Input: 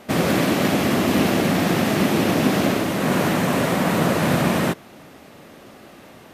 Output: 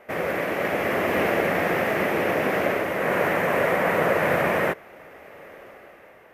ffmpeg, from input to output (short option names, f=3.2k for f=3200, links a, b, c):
-af "dynaudnorm=f=120:g=13:m=11dB,equalizer=f=125:t=o:w=1:g=-6,equalizer=f=250:t=o:w=1:g=-9,equalizer=f=500:t=o:w=1:g=8,equalizer=f=2k:t=o:w=1:g=10,equalizer=f=4k:t=o:w=1:g=-11,equalizer=f=8k:t=o:w=1:g=-9,volume=-8.5dB"